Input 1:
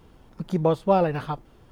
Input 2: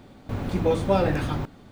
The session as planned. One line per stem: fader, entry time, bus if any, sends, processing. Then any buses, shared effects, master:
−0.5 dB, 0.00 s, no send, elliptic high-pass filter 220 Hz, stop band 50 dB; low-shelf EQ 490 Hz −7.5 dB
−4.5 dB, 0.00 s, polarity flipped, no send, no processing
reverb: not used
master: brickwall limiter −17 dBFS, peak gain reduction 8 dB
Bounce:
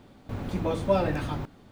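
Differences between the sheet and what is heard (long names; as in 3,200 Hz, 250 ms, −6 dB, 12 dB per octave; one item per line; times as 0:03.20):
stem 1 −0.5 dB → −6.5 dB
master: missing brickwall limiter −17 dBFS, peak gain reduction 8 dB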